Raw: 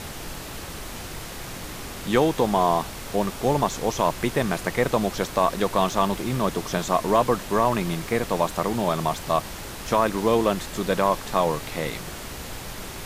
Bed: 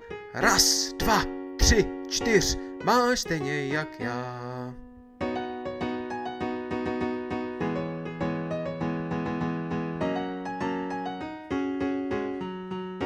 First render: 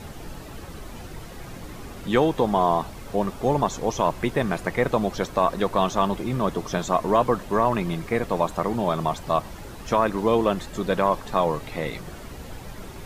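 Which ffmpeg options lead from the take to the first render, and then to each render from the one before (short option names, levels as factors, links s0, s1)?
-af "afftdn=nr=10:nf=-36"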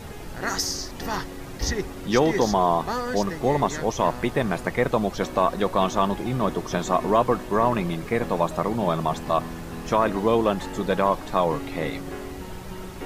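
-filter_complex "[1:a]volume=0.473[s0];[0:a][s0]amix=inputs=2:normalize=0"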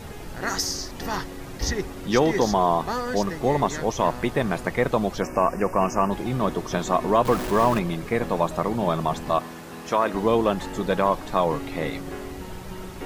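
-filter_complex "[0:a]asplit=3[s0][s1][s2];[s0]afade=t=out:st=5.2:d=0.02[s3];[s1]asuperstop=centerf=3700:order=12:qfactor=1.9,afade=t=in:st=5.2:d=0.02,afade=t=out:st=6.1:d=0.02[s4];[s2]afade=t=in:st=6.1:d=0.02[s5];[s3][s4][s5]amix=inputs=3:normalize=0,asettb=1/sr,asplit=3[s6][s7][s8];[s6]atrim=end=7.254[s9];[s7]atrim=start=7.25:end=7.79,asetpts=PTS-STARTPTS,afade=t=in:d=0.004:c=qsin,afade=t=out:st=0.536:d=0.004:c=qsin,aeval=exprs='val(0)+0.5*0.0447*sgn(val(0))':c=same[s10];[s8]atrim=start=7.786[s11];[s9][s10]acrossfade=d=0.004:c1=hsin:c2=qsin[s12];[s12][s11]acrossfade=d=0.004:c1=qsin:c2=hsin,asettb=1/sr,asplit=3[s13][s14][s15];[s13]atrim=end=9.384[s16];[s14]atrim=start=9.38:end=10.14,asetpts=PTS-STARTPTS,afade=t=in:d=0.004:c=qsin,afade=t=out:st=0.756:d=0.004:c=qsin,highpass=f=320:p=1[s17];[s15]atrim=start=10.136[s18];[s16][s17]acrossfade=d=0.004:c1=hsin:c2=qsin[s19];[s19][s18]acrossfade=d=0.004:c1=qsin:c2=hsin"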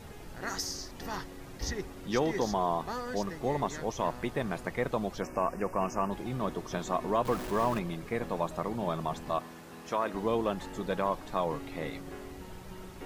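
-af "volume=0.355"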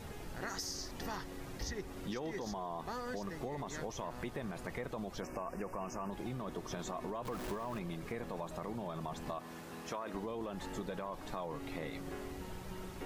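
-af "alimiter=level_in=1.06:limit=0.0631:level=0:latency=1:release=17,volume=0.944,acompressor=threshold=0.0141:ratio=6"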